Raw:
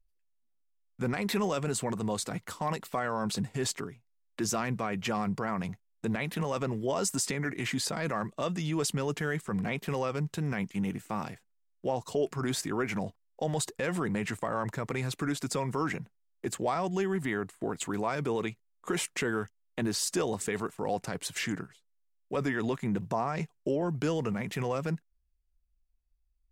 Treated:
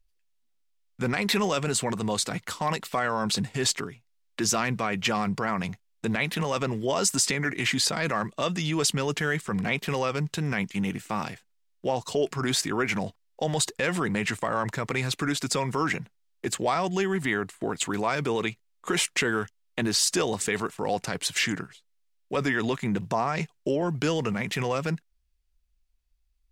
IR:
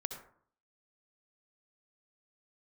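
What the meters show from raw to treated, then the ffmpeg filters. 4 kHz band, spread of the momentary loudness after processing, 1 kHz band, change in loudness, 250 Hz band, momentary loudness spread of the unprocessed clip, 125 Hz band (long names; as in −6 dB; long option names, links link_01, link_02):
+9.5 dB, 8 LU, +5.0 dB, +5.0 dB, +3.0 dB, 6 LU, +3.0 dB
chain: -af "equalizer=frequency=3600:width=0.47:gain=7,volume=3dB"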